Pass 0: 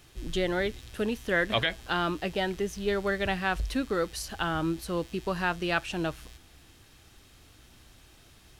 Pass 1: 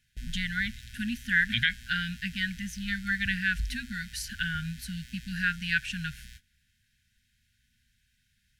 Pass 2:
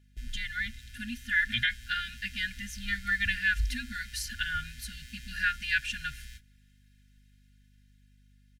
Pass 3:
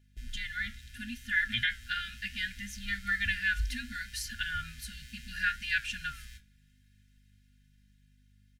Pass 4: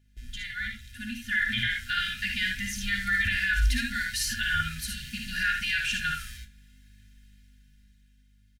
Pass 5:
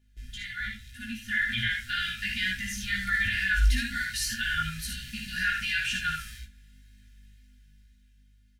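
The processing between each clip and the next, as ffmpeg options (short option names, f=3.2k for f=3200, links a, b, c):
-af "afftfilt=real='re*(1-between(b*sr/4096,250,1400))':imag='im*(1-between(b*sr/4096,250,1400))':win_size=4096:overlap=0.75,agate=range=-16dB:threshold=-49dB:ratio=16:detection=peak,equalizer=f=1.8k:t=o:w=0.81:g=5"
-af "aecho=1:1:2.9:0.94,dynaudnorm=f=390:g=9:m=4dB,aeval=exprs='val(0)+0.002*(sin(2*PI*50*n/s)+sin(2*PI*2*50*n/s)/2+sin(2*PI*3*50*n/s)/3+sin(2*PI*4*50*n/s)/4+sin(2*PI*5*50*n/s)/5)':c=same,volume=-6dB"
-af "flanger=delay=8.3:depth=6.9:regen=73:speed=0.7:shape=triangular,volume=2.5dB"
-af "dynaudnorm=f=220:g=13:m=8dB,alimiter=limit=-19dB:level=0:latency=1:release=12,aecho=1:1:57|75:0.501|0.473"
-af "flanger=delay=16:depth=3.2:speed=2,volume=2dB"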